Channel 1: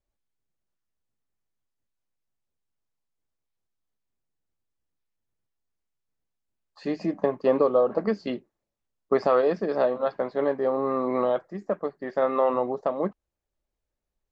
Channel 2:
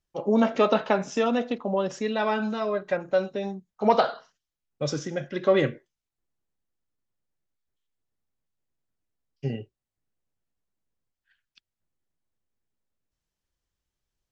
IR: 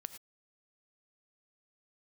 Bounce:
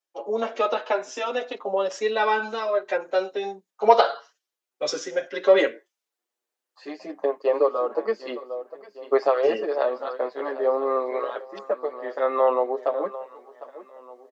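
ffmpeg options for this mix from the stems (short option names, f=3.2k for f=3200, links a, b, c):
-filter_complex "[0:a]volume=-6.5dB,asplit=2[a][b];[b]volume=-15dB[c];[1:a]volume=1.5dB[d];[c]aecho=0:1:753|1506|2259|3012|3765|4518:1|0.43|0.185|0.0795|0.0342|0.0147[e];[a][d][e]amix=inputs=3:normalize=0,dynaudnorm=f=230:g=13:m=11dB,highpass=f=360:w=0.5412,highpass=f=360:w=1.3066,asplit=2[f][g];[g]adelay=6.9,afreqshift=0.53[h];[f][h]amix=inputs=2:normalize=1"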